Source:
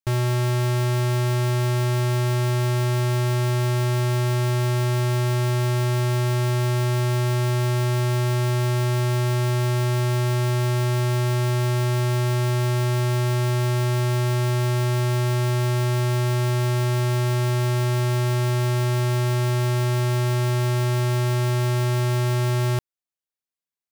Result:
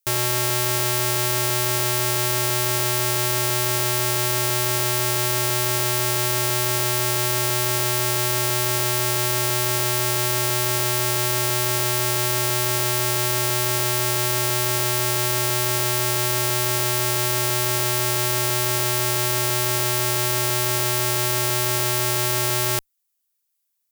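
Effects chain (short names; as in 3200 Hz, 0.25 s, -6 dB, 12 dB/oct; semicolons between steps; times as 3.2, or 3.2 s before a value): added harmonics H 2 -8 dB, 8 -15 dB, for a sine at -21 dBFS; RIAA curve recording; gain +3 dB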